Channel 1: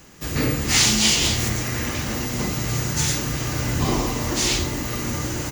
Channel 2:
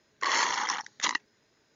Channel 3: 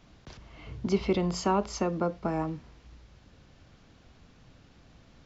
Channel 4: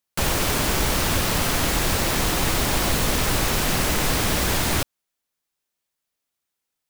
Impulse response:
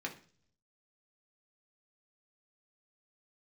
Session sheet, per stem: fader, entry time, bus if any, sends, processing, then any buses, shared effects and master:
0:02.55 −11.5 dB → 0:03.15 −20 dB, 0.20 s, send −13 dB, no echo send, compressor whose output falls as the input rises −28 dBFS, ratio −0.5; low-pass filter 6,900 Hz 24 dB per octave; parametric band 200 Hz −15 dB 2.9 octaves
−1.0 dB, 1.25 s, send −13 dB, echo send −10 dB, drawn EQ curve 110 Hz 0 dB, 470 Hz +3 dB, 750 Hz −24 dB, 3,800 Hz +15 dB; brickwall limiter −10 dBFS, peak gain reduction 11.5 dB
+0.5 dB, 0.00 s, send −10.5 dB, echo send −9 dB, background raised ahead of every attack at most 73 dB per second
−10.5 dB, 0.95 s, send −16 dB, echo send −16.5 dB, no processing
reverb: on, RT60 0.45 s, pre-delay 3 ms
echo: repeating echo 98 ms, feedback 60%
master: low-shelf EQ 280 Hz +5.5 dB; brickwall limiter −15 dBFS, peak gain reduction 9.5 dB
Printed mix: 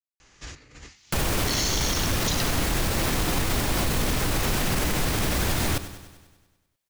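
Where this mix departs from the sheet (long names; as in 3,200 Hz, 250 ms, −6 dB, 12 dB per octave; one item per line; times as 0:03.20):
stem 3: muted
stem 4 −10.5 dB → −1.5 dB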